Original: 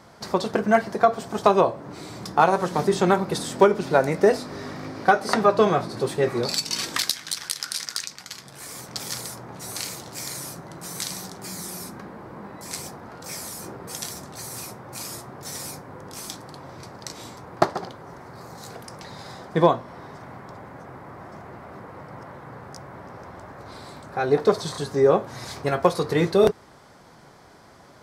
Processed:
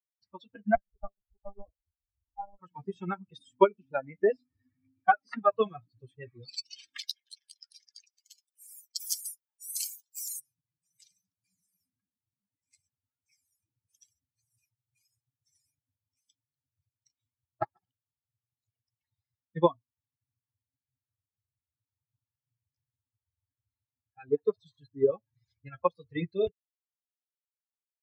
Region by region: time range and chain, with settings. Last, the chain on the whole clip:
0.75–2.59 s: Bessel low-pass 670 Hz, order 6 + bass shelf 220 Hz -10 dB + monotone LPC vocoder at 8 kHz 200 Hz
8.13–10.40 s: RIAA curve recording + hum notches 50/100/150 Hz
whole clip: expander on every frequency bin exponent 3; upward expansion 1.5:1, over -33 dBFS

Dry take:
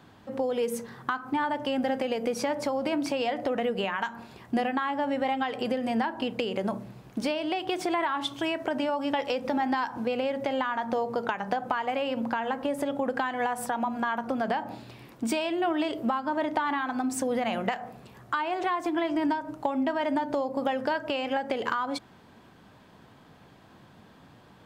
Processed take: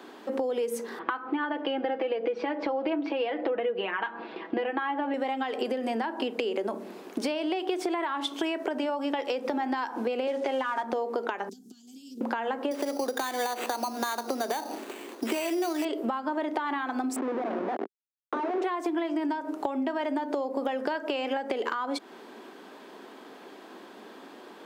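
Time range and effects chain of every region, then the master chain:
0.99–5.14 s: low-pass 3.4 kHz 24 dB/octave + comb 6.1 ms, depth 62%
10.27–10.83 s: comb 7.5 ms, depth 52% + companded quantiser 6-bit + band-pass 280–6700 Hz
11.49–12.21 s: elliptic band-stop 170–5700 Hz, stop band 50 dB + loudspeaker Doppler distortion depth 0.3 ms
12.71–15.85 s: high-pass 220 Hz + sample-rate reducer 5.3 kHz
17.16–18.62 s: Schmitt trigger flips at -32.5 dBFS + low-pass 1.3 kHz
whole clip: steep high-pass 240 Hz 36 dB/octave; peaking EQ 390 Hz +7.5 dB 0.43 oct; compression 4:1, threshold -36 dBFS; trim +7.5 dB

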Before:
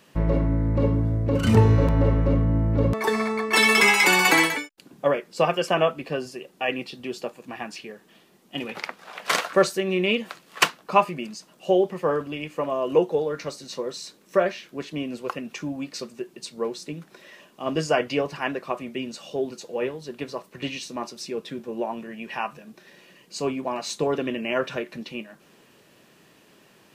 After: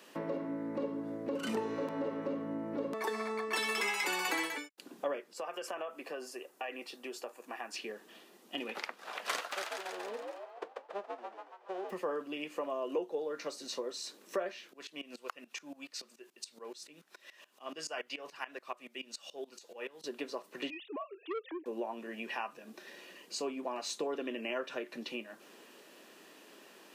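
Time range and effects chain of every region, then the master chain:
5.33–7.74 s: peaking EQ 3.6 kHz -8.5 dB 1.5 oct + compression 3:1, threshold -28 dBFS + high-pass 780 Hz 6 dB/octave
9.51–11.89 s: formants flattened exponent 0.1 + ladder band-pass 510 Hz, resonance 65% + frequency-shifting echo 140 ms, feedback 53%, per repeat +79 Hz, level -3.5 dB
14.73–20.04 s: peaking EQ 290 Hz -11 dB 2.9 oct + sawtooth tremolo in dB swelling 7 Hz, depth 19 dB
20.70–21.66 s: formants replaced by sine waves + transformer saturation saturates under 990 Hz
whole clip: high-pass 250 Hz 24 dB/octave; band-stop 2.2 kHz, Q 28; compression 2.5:1, threshold -39 dBFS

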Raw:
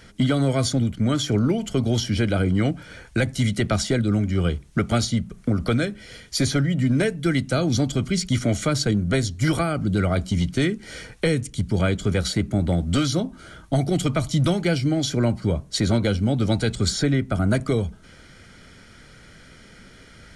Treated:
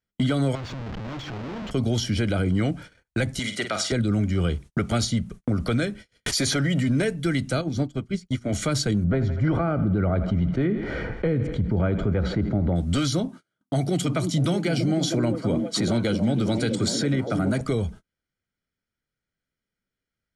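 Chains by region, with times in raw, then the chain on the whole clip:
0.55–1.71 s: compression, threshold -29 dBFS + Schmitt trigger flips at -43 dBFS + distance through air 180 m
3.39–3.92 s: frequency weighting A + flutter echo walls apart 8.5 m, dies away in 0.33 s
6.26–6.89 s: bass shelf 230 Hz -9.5 dB + level flattener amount 100%
7.61–8.53 s: treble shelf 2.3 kHz -8 dB + hum notches 60/120/180/240/300/360/420 Hz + upward expansion 2.5:1, over -38 dBFS
9.04–12.76 s: low-pass 1.3 kHz + thinning echo 81 ms, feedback 64%, high-pass 210 Hz, level -17 dB + level flattener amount 50%
13.28–17.61 s: high-pass 110 Hz 24 dB/octave + repeats whose band climbs or falls 320 ms, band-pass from 240 Hz, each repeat 0.7 oct, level -3 dB
whole clip: gate -37 dBFS, range -40 dB; peak limiter -15 dBFS

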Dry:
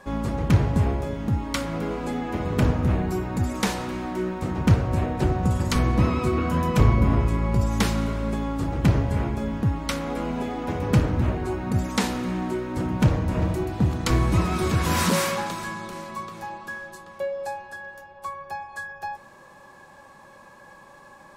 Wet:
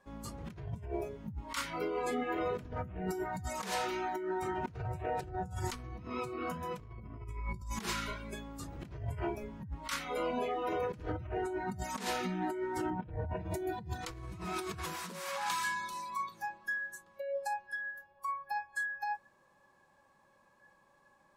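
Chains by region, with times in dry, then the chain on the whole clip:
12.90–13.37 s: distance through air 220 m + tape noise reduction on one side only decoder only
whole clip: spectral noise reduction 19 dB; compressor with a negative ratio -33 dBFS, ratio -1; trim -6 dB

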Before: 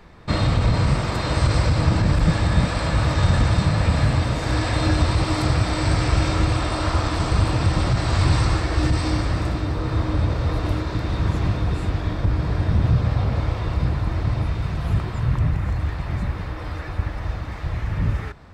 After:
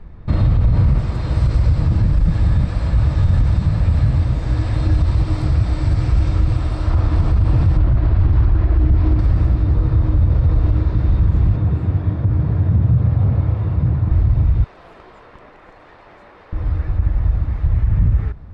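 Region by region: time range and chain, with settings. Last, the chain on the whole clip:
0.98–6.90 s: treble shelf 3.9 kHz +9 dB + flange 1.5 Hz, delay 0.8 ms, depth 9.5 ms, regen -71%
7.77–9.19 s: distance through air 210 m + comb 3 ms, depth 33% + loudspeaker Doppler distortion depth 0.57 ms
11.56–14.11 s: high-pass 84 Hz 24 dB/octave + treble shelf 3.5 kHz -7.5 dB
14.64–16.53 s: high-pass 420 Hz 24 dB/octave + valve stage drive 31 dB, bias 0.6
whole clip: RIAA curve playback; peak limiter -3 dBFS; trim -4 dB

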